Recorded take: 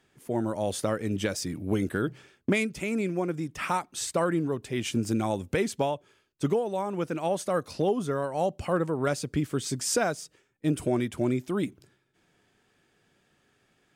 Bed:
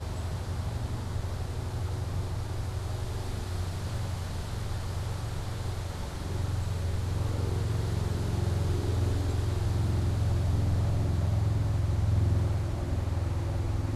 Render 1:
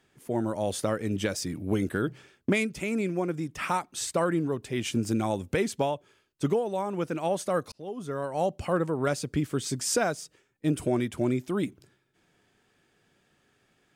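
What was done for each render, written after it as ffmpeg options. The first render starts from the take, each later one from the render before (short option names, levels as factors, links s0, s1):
-filter_complex "[0:a]asplit=2[s0][s1];[s0]atrim=end=7.72,asetpts=PTS-STARTPTS,afade=t=out:st=7.716:d=0.004:c=hsin[s2];[s1]atrim=start=7.72,asetpts=PTS-STARTPTS,afade=t=in:d=0.65[s3];[s2][s3]concat=n=2:v=0:a=1"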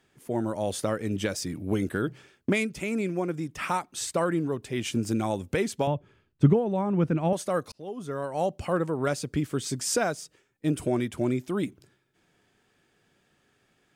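-filter_complex "[0:a]asettb=1/sr,asplit=3[s0][s1][s2];[s0]atrim=end=5.874[s3];[s1]atrim=start=5.87:end=7.33,asetpts=PTS-STARTPTS,afade=t=in:d=0.004:c=qsin,afade=t=out:st=1.456:d=0.004:c=qsin,bass=f=250:g=14,treble=f=4000:g=-13[s4];[s2]atrim=start=7.326[s5];[s3][s4]acrossfade=d=0.004:c1=hsin:c2=qsin[s6];[s6][s5]acrossfade=d=0.004:c1=qsin:c2=hsin"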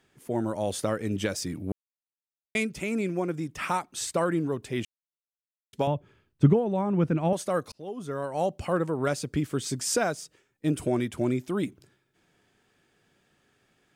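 -filter_complex "[0:a]asplit=5[s0][s1][s2][s3][s4];[s0]atrim=end=1.72,asetpts=PTS-STARTPTS,afade=t=out:st=1.716:d=0.004:c=hsin[s5];[s1]atrim=start=1.72:end=2.55,asetpts=PTS-STARTPTS,volume=0[s6];[s2]atrim=start=2.55:end=4.85,asetpts=PTS-STARTPTS,afade=t=in:d=0.004:c=hsin,afade=t=out:st=2.296:d=0.004:c=hsin[s7];[s3]atrim=start=4.85:end=5.73,asetpts=PTS-STARTPTS,volume=0[s8];[s4]atrim=start=5.73,asetpts=PTS-STARTPTS,afade=t=in:d=0.004:c=hsin[s9];[s5][s6][s7][s8][s9]concat=n=5:v=0:a=1"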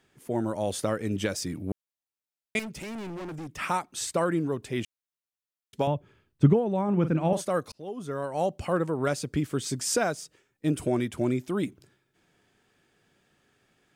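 -filter_complex "[0:a]asettb=1/sr,asplit=3[s0][s1][s2];[s0]atrim=end=2.594[s3];[s1]atrim=start=2.59:end=3.57,asetpts=PTS-STARTPTS,afade=t=in:d=0.004:c=qsin,afade=t=out:st=0.976:d=0.004:c=qsin,volume=56.2,asoftclip=hard,volume=0.0178[s4];[s2]atrim=start=3.566[s5];[s3][s4]acrossfade=d=0.004:c1=hsin:c2=qsin[s6];[s6][s5]acrossfade=d=0.004:c1=qsin:c2=hsin,asettb=1/sr,asplit=3[s7][s8][s9];[s7]atrim=end=6.844[s10];[s8]atrim=start=6.84:end=7.45,asetpts=PTS-STARTPTS,afade=t=in:d=0.004:c=qsin,afade=t=out:st=0.606:d=0.004:c=qsin,asplit=2[s11][s12];[s12]adelay=44,volume=0.282[s13];[s11][s13]amix=inputs=2:normalize=0,atrim=end_sample=26901[s14];[s9]atrim=start=7.446[s15];[s10][s14]acrossfade=d=0.004:c1=hsin:c2=qsin[s16];[s16][s15]acrossfade=d=0.004:c1=qsin:c2=hsin"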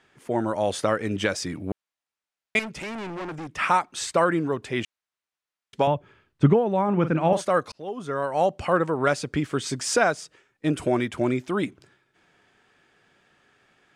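-af "lowpass=9600,equalizer=f=1400:w=0.38:g=8.5"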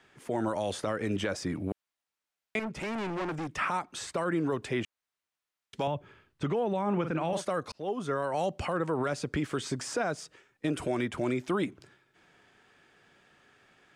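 -filter_complex "[0:a]acrossover=split=350|1700[s0][s1][s2];[s0]acompressor=threshold=0.0355:ratio=4[s3];[s1]acompressor=threshold=0.0562:ratio=4[s4];[s2]acompressor=threshold=0.01:ratio=4[s5];[s3][s4][s5]amix=inputs=3:normalize=0,acrossover=split=3000[s6][s7];[s6]alimiter=limit=0.0891:level=0:latency=1[s8];[s8][s7]amix=inputs=2:normalize=0"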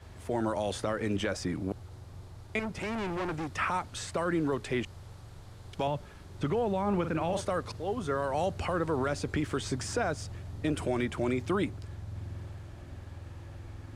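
-filter_complex "[1:a]volume=0.188[s0];[0:a][s0]amix=inputs=2:normalize=0"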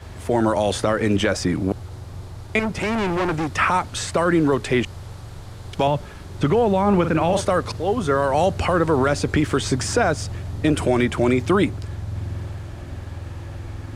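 -af "volume=3.76"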